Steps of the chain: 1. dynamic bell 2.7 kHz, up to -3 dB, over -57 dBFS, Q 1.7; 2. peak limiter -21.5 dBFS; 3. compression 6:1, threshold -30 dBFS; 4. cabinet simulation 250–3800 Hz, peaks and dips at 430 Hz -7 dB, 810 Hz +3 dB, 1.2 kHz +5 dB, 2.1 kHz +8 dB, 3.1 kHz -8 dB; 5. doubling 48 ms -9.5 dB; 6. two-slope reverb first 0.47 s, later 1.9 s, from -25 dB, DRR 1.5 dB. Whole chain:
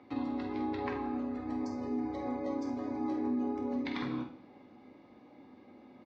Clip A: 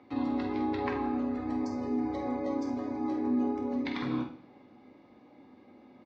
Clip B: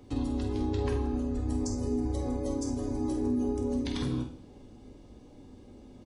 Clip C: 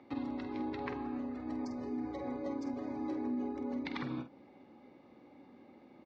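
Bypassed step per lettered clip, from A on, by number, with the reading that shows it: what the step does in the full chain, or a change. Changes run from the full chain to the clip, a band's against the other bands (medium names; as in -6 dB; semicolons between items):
3, mean gain reduction 2.5 dB; 4, loudness change +4.0 LU; 6, momentary loudness spread change +17 LU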